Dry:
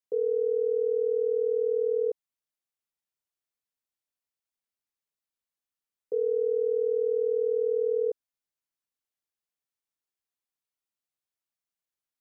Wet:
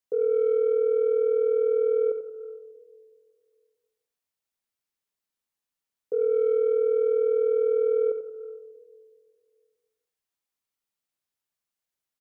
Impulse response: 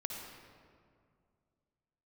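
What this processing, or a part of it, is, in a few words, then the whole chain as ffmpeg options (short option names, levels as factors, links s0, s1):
saturated reverb return: -filter_complex "[0:a]asplit=2[s0][s1];[1:a]atrim=start_sample=2205[s2];[s1][s2]afir=irnorm=-1:irlink=0,asoftclip=type=tanh:threshold=0.0562,volume=0.473[s3];[s0][s3]amix=inputs=2:normalize=0,aecho=1:1:89:0.355"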